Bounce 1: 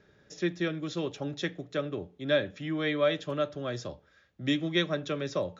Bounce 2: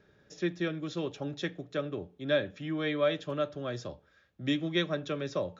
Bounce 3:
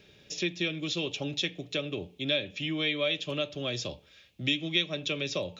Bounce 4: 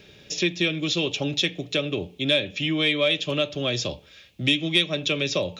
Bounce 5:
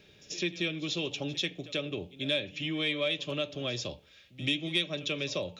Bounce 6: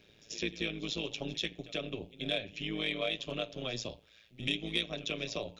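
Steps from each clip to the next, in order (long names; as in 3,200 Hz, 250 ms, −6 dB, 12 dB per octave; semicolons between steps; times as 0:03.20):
high-shelf EQ 5,700 Hz −4.5 dB; notch filter 2,000 Hz, Q 19; level −1.5 dB
high shelf with overshoot 2,000 Hz +8.5 dB, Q 3; downward compressor 2 to 1, threshold −36 dBFS, peak gain reduction 11 dB; level +4.5 dB
soft clipping −14.5 dBFS, distortion −27 dB; level +7.5 dB
echo ahead of the sound 88 ms −18 dB; level −8.5 dB
amplitude modulation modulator 110 Hz, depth 75%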